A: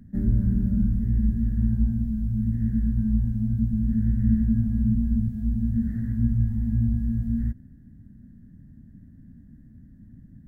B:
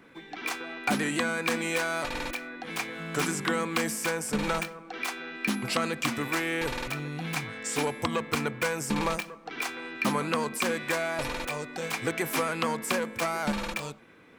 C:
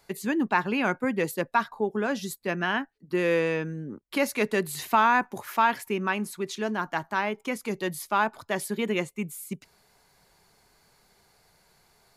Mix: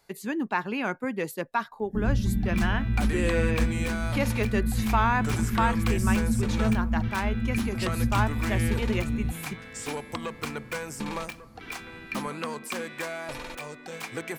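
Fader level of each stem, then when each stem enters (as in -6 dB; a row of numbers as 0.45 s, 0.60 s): -3.5 dB, -5.0 dB, -3.5 dB; 1.80 s, 2.10 s, 0.00 s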